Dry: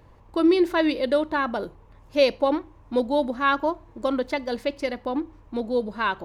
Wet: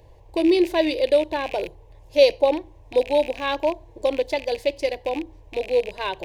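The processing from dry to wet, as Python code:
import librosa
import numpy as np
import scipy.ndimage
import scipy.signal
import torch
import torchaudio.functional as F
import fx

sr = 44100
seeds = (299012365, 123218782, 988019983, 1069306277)

y = fx.rattle_buzz(x, sr, strikes_db=-38.0, level_db=-24.0)
y = fx.fixed_phaser(y, sr, hz=540.0, stages=4)
y = F.gain(torch.from_numpy(y), 4.5).numpy()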